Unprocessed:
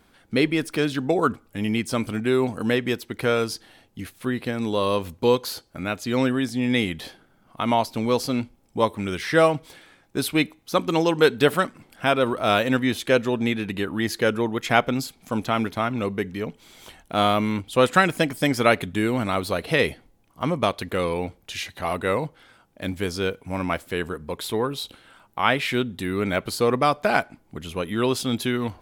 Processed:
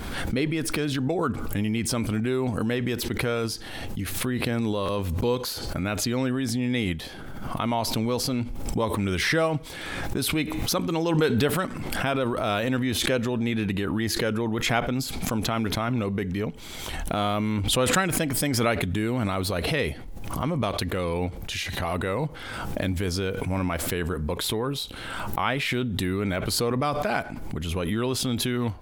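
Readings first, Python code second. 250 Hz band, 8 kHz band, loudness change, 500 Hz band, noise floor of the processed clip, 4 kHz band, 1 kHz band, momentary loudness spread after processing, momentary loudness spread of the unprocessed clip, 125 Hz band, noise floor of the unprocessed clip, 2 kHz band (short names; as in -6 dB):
-1.5 dB, +5.5 dB, -3.0 dB, -5.0 dB, -37 dBFS, 0.0 dB, -5.0 dB, 7 LU, 11 LU, +2.5 dB, -60 dBFS, -3.5 dB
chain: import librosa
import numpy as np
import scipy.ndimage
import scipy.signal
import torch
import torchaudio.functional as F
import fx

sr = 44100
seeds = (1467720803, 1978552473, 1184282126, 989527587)

p1 = fx.over_compress(x, sr, threshold_db=-27.0, ratio=-0.5)
p2 = x + (p1 * 10.0 ** (-3.0 / 20.0))
p3 = fx.low_shelf(p2, sr, hz=110.0, db=11.0)
p4 = fx.buffer_glitch(p3, sr, at_s=(4.85,), block=512, repeats=2)
p5 = fx.pre_swell(p4, sr, db_per_s=29.0)
y = p5 * 10.0 ** (-7.5 / 20.0)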